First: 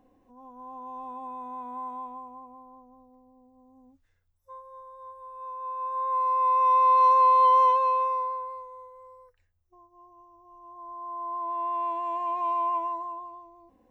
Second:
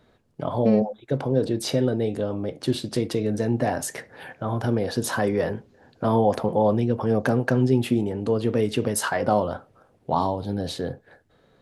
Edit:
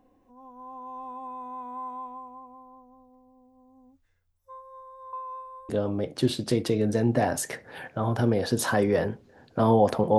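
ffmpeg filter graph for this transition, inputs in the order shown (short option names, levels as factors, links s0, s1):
-filter_complex "[0:a]apad=whole_dur=10.18,atrim=end=10.18,asplit=2[s0][s1];[s0]atrim=end=5.132[s2];[s1]atrim=start=5.128:end=5.692,asetpts=PTS-STARTPTS,areverse[s3];[1:a]atrim=start=2.138:end=6.63[s4];[s2][s3]acrossfade=d=0.004:c1=hsin:c2=hsin[s5];[s5][s4]acrossfade=d=0.004:c1=hsin:c2=hsin"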